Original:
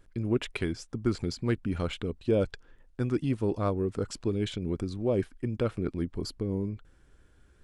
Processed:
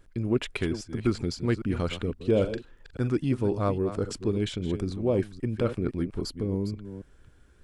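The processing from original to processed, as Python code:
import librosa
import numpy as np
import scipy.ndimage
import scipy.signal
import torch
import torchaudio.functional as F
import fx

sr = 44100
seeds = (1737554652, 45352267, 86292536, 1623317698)

y = fx.reverse_delay(x, sr, ms=270, wet_db=-11)
y = fx.doubler(y, sr, ms=42.0, db=-10.5, at=(2.31, 3.12))
y = y * 10.0 ** (2.0 / 20.0)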